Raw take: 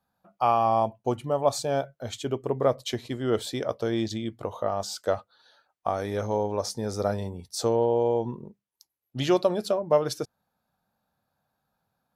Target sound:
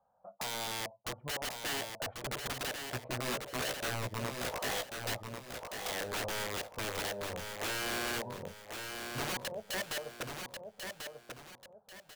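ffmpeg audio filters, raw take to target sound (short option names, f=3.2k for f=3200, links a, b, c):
-filter_complex "[0:a]lowpass=f=1.1k:w=0.5412,lowpass=f=1.1k:w=1.3066,lowshelf=f=430:t=q:w=3:g=-8.5,acompressor=threshold=-33dB:ratio=16,aeval=exprs='(mod(59.6*val(0)+1,2)-1)/59.6':c=same,asettb=1/sr,asplit=3[a][b][c];[a]atrim=end=2.864[d];[b]atrim=start=2.86:end=5.14,asetpts=PTS-STARTPTS,afade=t=in:d=0.004:c=qsin,afade=t=out:st=2.276:d=0.004:c=qsin,asplit=2[e][f];[f]adelay=16,volume=-4dB[g];[e][g]amix=inputs=2:normalize=0,atrim=end_sample=100548[h];[c]atrim=start=5.136[i];[d][h]acrossfade=d=0.004:c1=hsin:c2=qsin[j];[j][i]acrossfade=d=0.004:c1=qsin:c2=hsin,aecho=1:1:1091|2182|3273|4364:0.501|0.165|0.0546|0.018,volume=4dB"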